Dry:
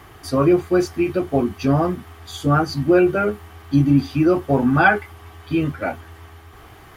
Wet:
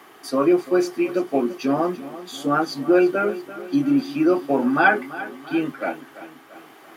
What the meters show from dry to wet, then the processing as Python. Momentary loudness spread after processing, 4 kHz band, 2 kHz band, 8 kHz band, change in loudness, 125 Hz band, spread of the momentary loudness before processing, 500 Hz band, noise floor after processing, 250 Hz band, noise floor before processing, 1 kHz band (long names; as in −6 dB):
14 LU, −1.5 dB, −1.5 dB, can't be measured, −2.5 dB, −15.5 dB, 10 LU, −1.5 dB, −48 dBFS, −2.0 dB, −45 dBFS, −1.5 dB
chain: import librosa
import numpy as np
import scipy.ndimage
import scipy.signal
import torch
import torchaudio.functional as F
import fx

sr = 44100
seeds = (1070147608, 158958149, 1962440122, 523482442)

y = scipy.signal.sosfilt(scipy.signal.butter(4, 220.0, 'highpass', fs=sr, output='sos'), x)
y = fx.echo_feedback(y, sr, ms=339, feedback_pct=53, wet_db=-15.5)
y = y * 10.0 ** (-1.5 / 20.0)